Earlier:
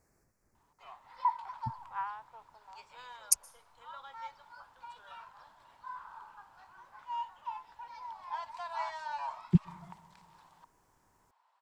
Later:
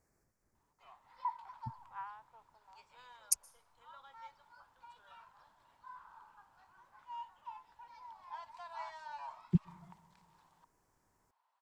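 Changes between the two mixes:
speech −5.0 dB
background −8.0 dB

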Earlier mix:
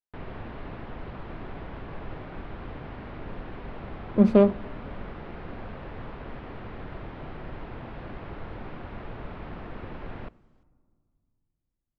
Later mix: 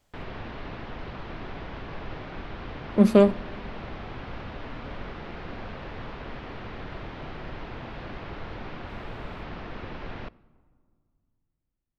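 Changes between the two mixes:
speech: entry −1.20 s
master: remove head-to-tape spacing loss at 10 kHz 23 dB

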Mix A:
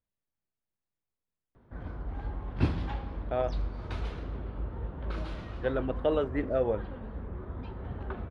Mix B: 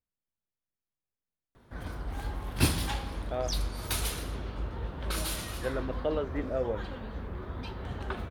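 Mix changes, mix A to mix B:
speech −3.5 dB
background: remove head-to-tape spacing loss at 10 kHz 40 dB

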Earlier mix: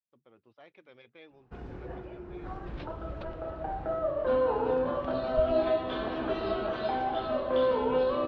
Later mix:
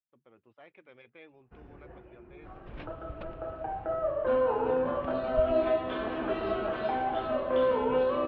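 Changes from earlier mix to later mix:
first sound −9.5 dB
master: add high shelf with overshoot 3,300 Hz −7 dB, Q 1.5

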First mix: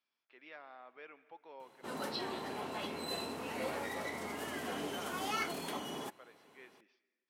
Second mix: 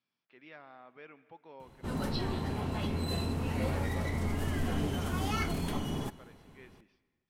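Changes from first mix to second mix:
background: send on
master: remove high-pass filter 390 Hz 12 dB per octave

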